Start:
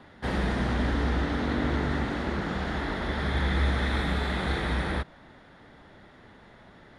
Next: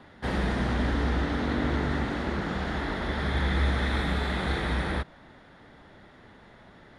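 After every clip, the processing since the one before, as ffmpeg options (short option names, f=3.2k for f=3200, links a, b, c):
-af anull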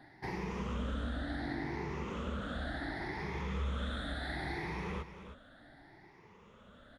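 -af "afftfilt=real='re*pow(10,15/40*sin(2*PI*(0.78*log(max(b,1)*sr/1024/100)/log(2)-(0.69)*(pts-256)/sr)))':imag='im*pow(10,15/40*sin(2*PI*(0.78*log(max(b,1)*sr/1024/100)/log(2)-(0.69)*(pts-256)/sr)))':win_size=1024:overlap=0.75,acompressor=threshold=-29dB:ratio=2,aecho=1:1:317:0.266,volume=-9dB"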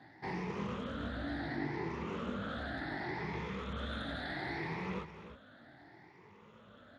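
-af "flanger=delay=18:depth=6.3:speed=0.76,aresample=22050,aresample=44100,volume=3.5dB" -ar 32000 -c:a libspeex -b:a 28k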